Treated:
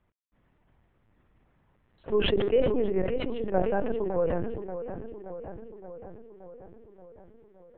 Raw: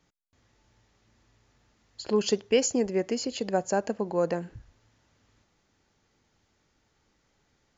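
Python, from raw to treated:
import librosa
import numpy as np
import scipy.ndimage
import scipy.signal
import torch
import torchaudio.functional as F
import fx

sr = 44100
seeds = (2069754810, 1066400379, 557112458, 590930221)

y = fx.quant_companded(x, sr, bits=8)
y = fx.air_absorb(y, sr, metres=490.0)
y = fx.echo_filtered(y, sr, ms=574, feedback_pct=66, hz=2900.0, wet_db=-10.0)
y = fx.lpc_vocoder(y, sr, seeds[0], excitation='pitch_kept', order=10)
y = fx.sustainer(y, sr, db_per_s=35.0)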